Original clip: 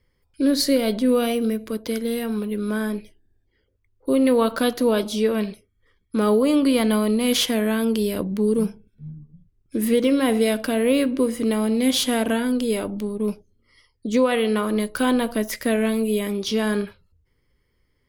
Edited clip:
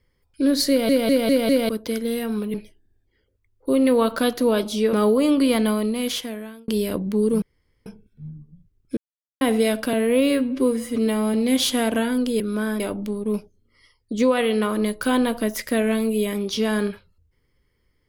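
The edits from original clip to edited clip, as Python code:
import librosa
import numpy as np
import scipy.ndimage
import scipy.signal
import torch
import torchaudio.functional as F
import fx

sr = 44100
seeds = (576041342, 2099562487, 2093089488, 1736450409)

y = fx.edit(x, sr, fx.stutter_over(start_s=0.69, slice_s=0.2, count=5),
    fx.move(start_s=2.54, length_s=0.4, to_s=12.74),
    fx.cut(start_s=5.33, length_s=0.85),
    fx.fade_out_span(start_s=6.81, length_s=1.12),
    fx.insert_room_tone(at_s=8.67, length_s=0.44),
    fx.silence(start_s=9.78, length_s=0.44),
    fx.stretch_span(start_s=10.74, length_s=0.94, factor=1.5), tone=tone)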